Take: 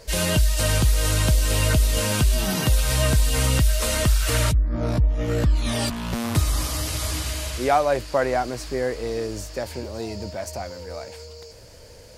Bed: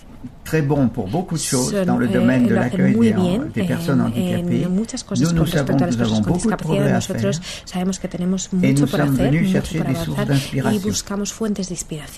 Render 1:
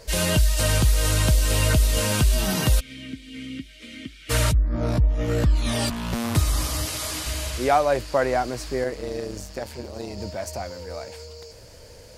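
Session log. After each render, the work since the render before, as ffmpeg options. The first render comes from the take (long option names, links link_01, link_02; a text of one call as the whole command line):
ffmpeg -i in.wav -filter_complex "[0:a]asplit=3[link_01][link_02][link_03];[link_01]afade=type=out:start_time=2.79:duration=0.02[link_04];[link_02]asplit=3[link_05][link_06][link_07];[link_05]bandpass=frequency=270:width_type=q:width=8,volume=0dB[link_08];[link_06]bandpass=frequency=2290:width_type=q:width=8,volume=-6dB[link_09];[link_07]bandpass=frequency=3010:width_type=q:width=8,volume=-9dB[link_10];[link_08][link_09][link_10]amix=inputs=3:normalize=0,afade=type=in:start_time=2.79:duration=0.02,afade=type=out:start_time=4.29:duration=0.02[link_11];[link_03]afade=type=in:start_time=4.29:duration=0.02[link_12];[link_04][link_11][link_12]amix=inputs=3:normalize=0,asettb=1/sr,asplit=3[link_13][link_14][link_15];[link_13]atrim=end=6.854[link_16];[link_14]atrim=start=6.85:end=7.27,asetpts=PTS-STARTPTS,afade=type=in:duration=0.004:curve=qsin,afade=type=out:start_time=0.416:duration=0.004:curve=qsin,highpass=frequency=250:poles=1[link_17];[link_15]atrim=start=7.266[link_18];[link_16][link_17]acrossfade=duration=0.004:curve1=hsin:curve2=qsin[link_19];[link_19][link_18]acrossfade=duration=0.004:curve1=qsin:curve2=hsin,asettb=1/sr,asplit=3[link_20][link_21][link_22];[link_20]atrim=end=8.844[link_23];[link_21]atrim=start=8.84:end=10.18,asetpts=PTS-STARTPTS,afade=type=in:duration=0.004:curve=qsin,afade=type=out:start_time=1.336:duration=0.004:curve=qsin,tremolo=f=140:d=0.71[link_24];[link_22]atrim=start=10.176[link_25];[link_23][link_24]acrossfade=duration=0.004:curve1=hsin:curve2=qsin[link_26];[link_26][link_25]acrossfade=duration=0.004:curve1=qsin:curve2=hsin" out.wav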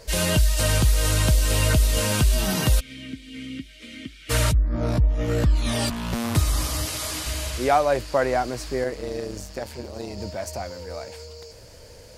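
ffmpeg -i in.wav -af anull out.wav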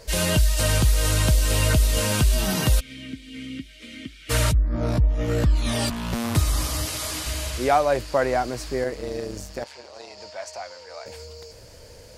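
ffmpeg -i in.wav -filter_complex "[0:a]asettb=1/sr,asplit=3[link_01][link_02][link_03];[link_01]atrim=end=9.644[link_04];[link_02]atrim=start=9.64:end=11.06,asetpts=PTS-STARTPTS,afade=type=in:duration=0.004:curve=qsin,afade=type=out:start_time=1.416:duration=0.004:curve=qsin,acrossover=split=550 7800:gain=0.0794 1 0.0794[link_05][link_06][link_07];[link_05][link_06][link_07]amix=inputs=3:normalize=0[link_08];[link_03]atrim=start=11.056[link_09];[link_04][link_08]acrossfade=duration=0.004:curve1=hsin:curve2=qsin[link_10];[link_10][link_09]acrossfade=duration=0.004:curve1=qsin:curve2=hsin" out.wav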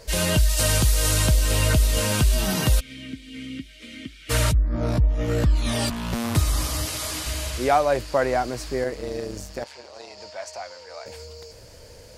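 ffmpeg -i in.wav -filter_complex "[0:a]asettb=1/sr,asplit=3[link_01][link_02][link_03];[link_01]atrim=end=0.494[link_04];[link_02]atrim=start=0.49:end=1.27,asetpts=PTS-STARTPTS,afade=type=in:duration=0.004:curve=qsin,afade=type=out:start_time=0.776:duration=0.004:curve=qsin,bass=frequency=250:gain=-1,treble=frequency=4000:gain=4[link_05];[link_03]atrim=start=1.266[link_06];[link_04][link_05]acrossfade=duration=0.004:curve1=hsin:curve2=qsin[link_07];[link_07][link_06]acrossfade=duration=0.004:curve1=qsin:curve2=hsin" out.wav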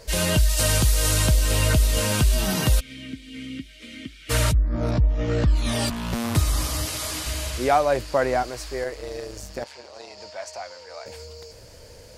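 ffmpeg -i in.wav -filter_complex "[0:a]asplit=3[link_01][link_02][link_03];[link_01]afade=type=out:start_time=4.9:duration=0.02[link_04];[link_02]lowpass=frequency=6400:width=0.5412,lowpass=frequency=6400:width=1.3066,afade=type=in:start_time=4.9:duration=0.02,afade=type=out:start_time=5.46:duration=0.02[link_05];[link_03]afade=type=in:start_time=5.46:duration=0.02[link_06];[link_04][link_05][link_06]amix=inputs=3:normalize=0,asettb=1/sr,asplit=3[link_07][link_08][link_09];[link_07]atrim=end=8.434[link_10];[link_08]atrim=start=8.43:end=9.43,asetpts=PTS-STARTPTS,afade=type=in:duration=0.004:curve=qsin,afade=type=out:start_time=0.996:duration=0.004:curve=qsin,equalizer=frequency=190:width=1.1:gain=-14[link_11];[link_09]atrim=start=9.426[link_12];[link_10][link_11]acrossfade=duration=0.004:curve1=hsin:curve2=qsin[link_13];[link_13][link_12]acrossfade=duration=0.004:curve1=qsin:curve2=hsin" out.wav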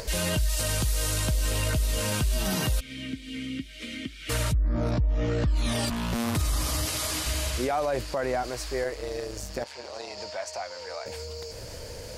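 ffmpeg -i in.wav -af "alimiter=limit=-18.5dB:level=0:latency=1:release=36,acompressor=mode=upward:threshold=-31dB:ratio=2.5" out.wav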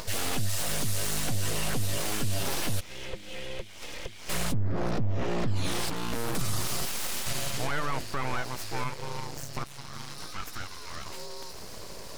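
ffmpeg -i in.wav -af "aeval=exprs='abs(val(0))':channel_layout=same" out.wav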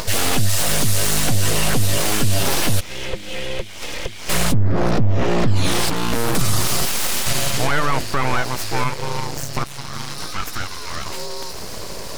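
ffmpeg -i in.wav -af "volume=11.5dB" out.wav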